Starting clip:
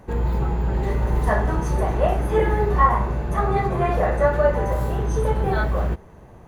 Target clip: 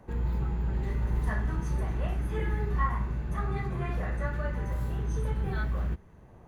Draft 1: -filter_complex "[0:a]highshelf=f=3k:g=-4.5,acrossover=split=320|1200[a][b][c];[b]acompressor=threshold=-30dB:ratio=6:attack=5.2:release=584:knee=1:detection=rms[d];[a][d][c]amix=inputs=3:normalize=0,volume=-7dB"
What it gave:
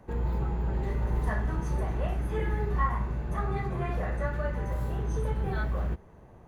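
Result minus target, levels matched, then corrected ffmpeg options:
compressor: peak gain reduction -8.5 dB
-filter_complex "[0:a]highshelf=f=3k:g=-4.5,acrossover=split=320|1200[a][b][c];[b]acompressor=threshold=-40dB:ratio=6:attack=5.2:release=584:knee=1:detection=rms[d];[a][d][c]amix=inputs=3:normalize=0,volume=-7dB"

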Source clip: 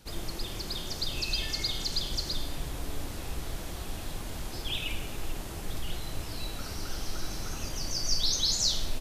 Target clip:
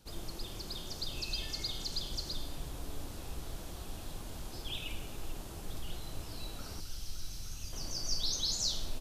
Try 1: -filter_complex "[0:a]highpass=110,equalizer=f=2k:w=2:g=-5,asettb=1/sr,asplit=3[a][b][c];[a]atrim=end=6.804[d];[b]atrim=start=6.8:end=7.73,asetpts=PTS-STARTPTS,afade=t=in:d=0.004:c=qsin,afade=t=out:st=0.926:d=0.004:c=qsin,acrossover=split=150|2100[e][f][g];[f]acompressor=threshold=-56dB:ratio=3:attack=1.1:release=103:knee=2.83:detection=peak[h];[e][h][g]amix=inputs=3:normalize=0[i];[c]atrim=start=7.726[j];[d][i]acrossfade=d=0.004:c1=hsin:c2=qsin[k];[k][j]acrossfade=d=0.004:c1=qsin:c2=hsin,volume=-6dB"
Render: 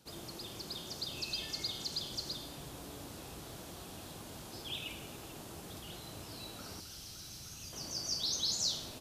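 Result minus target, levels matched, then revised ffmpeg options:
125 Hz band -4.5 dB
-filter_complex "[0:a]equalizer=f=2k:w=2:g=-5,asettb=1/sr,asplit=3[a][b][c];[a]atrim=end=6.804[d];[b]atrim=start=6.8:end=7.73,asetpts=PTS-STARTPTS,afade=t=in:d=0.004:c=qsin,afade=t=out:st=0.926:d=0.004:c=qsin,acrossover=split=150|2100[e][f][g];[f]acompressor=threshold=-56dB:ratio=3:attack=1.1:release=103:knee=2.83:detection=peak[h];[e][h][g]amix=inputs=3:normalize=0[i];[c]atrim=start=7.726[j];[d][i]acrossfade=d=0.004:c1=hsin:c2=qsin[k];[k][j]acrossfade=d=0.004:c1=qsin:c2=hsin,volume=-6dB"

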